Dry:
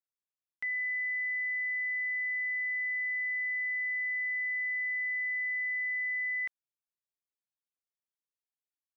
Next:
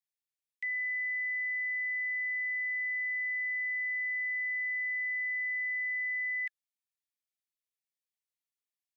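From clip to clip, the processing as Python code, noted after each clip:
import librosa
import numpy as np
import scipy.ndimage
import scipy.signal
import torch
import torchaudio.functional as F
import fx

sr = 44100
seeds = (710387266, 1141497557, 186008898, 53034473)

y = scipy.signal.sosfilt(scipy.signal.cheby1(10, 1.0, 1700.0, 'highpass', fs=sr, output='sos'), x)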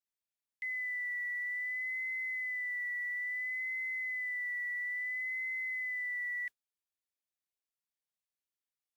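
y = fx.mod_noise(x, sr, seeds[0], snr_db=33)
y = fx.vibrato(y, sr, rate_hz=0.59, depth_cents=37.0)
y = y * librosa.db_to_amplitude(-3.5)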